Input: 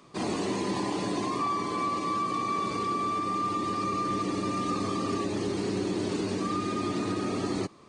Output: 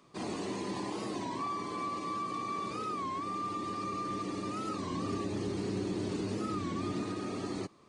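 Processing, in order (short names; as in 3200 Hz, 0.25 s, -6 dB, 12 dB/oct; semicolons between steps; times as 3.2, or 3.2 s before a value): 4.92–7.04 low shelf 170 Hz +8 dB; record warp 33 1/3 rpm, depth 160 cents; gain -7 dB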